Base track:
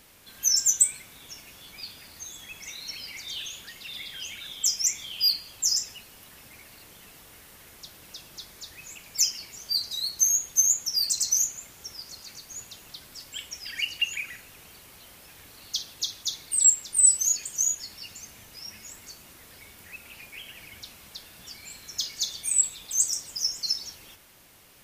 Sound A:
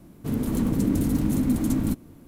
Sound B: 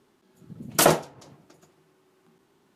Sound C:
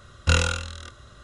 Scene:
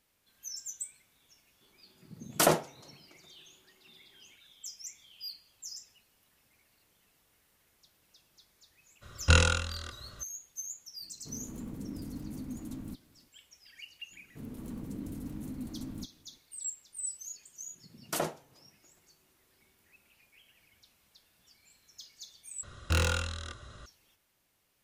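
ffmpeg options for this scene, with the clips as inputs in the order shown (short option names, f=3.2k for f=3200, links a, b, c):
-filter_complex "[2:a]asplit=2[a][b];[3:a]asplit=2[c][d];[1:a]asplit=2[e][f];[0:a]volume=-19.5dB[g];[d]asoftclip=type=tanh:threshold=-21.5dB[h];[g]asplit=2[i][j];[i]atrim=end=22.634[k];[h]atrim=end=1.23,asetpts=PTS-STARTPTS,volume=-1.5dB[l];[j]atrim=start=23.856[m];[a]atrim=end=2.75,asetpts=PTS-STARTPTS,volume=-6dB,afade=t=in:d=0.004:c=hsin,afade=t=out:st=2.746:d=0.004:c=hsin,adelay=1610[n];[c]atrim=end=1.23,asetpts=PTS-STARTPTS,volume=-2dB,afade=t=in:d=0.02,afade=t=out:st=1.21:d=0.02,adelay=9010[o];[e]atrim=end=2.27,asetpts=PTS-STARTPTS,volume=-18dB,afade=t=in:d=0.004:c=hsin,afade=t=out:st=2.266:d=0.004:c=hsin,adelay=11010[p];[f]atrim=end=2.27,asetpts=PTS-STARTPTS,volume=-17.5dB,afade=t=in:d=0.004:c=hsin,afade=t=out:st=2.266:d=0.004:c=hsin,adelay=14110[q];[b]atrim=end=2.75,asetpts=PTS-STARTPTS,volume=-14.5dB,afade=t=in:d=0.004:c=hsin,afade=t=out:st=2.746:d=0.004:c=hsin,adelay=17340[r];[k][l]acrossfade=d=0.004:c1=hsin:c2=hsin[s];[s][m]acrossfade=d=0.004:c1=hsin:c2=hsin[t];[t][n][o][p][q][r]amix=inputs=6:normalize=0"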